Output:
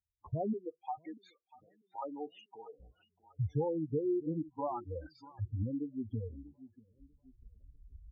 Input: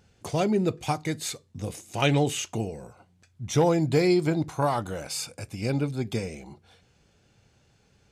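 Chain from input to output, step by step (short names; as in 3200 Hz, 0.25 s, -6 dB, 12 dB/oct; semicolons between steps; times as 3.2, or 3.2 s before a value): per-bin expansion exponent 1.5; recorder AGC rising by 20 dB/s; LPF 1000 Hz 12 dB/oct; compressor 2.5:1, threshold -33 dBFS, peak gain reduction 10 dB; 0.53–2.8 HPF 440 Hz 12 dB/oct; feedback echo 0.642 s, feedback 47%, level -13.5 dB; spectral gate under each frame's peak -15 dB strong; spectral noise reduction 19 dB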